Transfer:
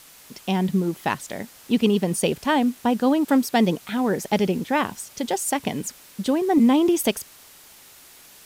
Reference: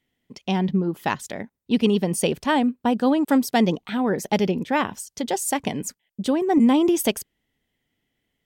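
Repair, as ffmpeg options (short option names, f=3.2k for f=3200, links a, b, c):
-af "adeclick=t=4,afwtdn=0.0045"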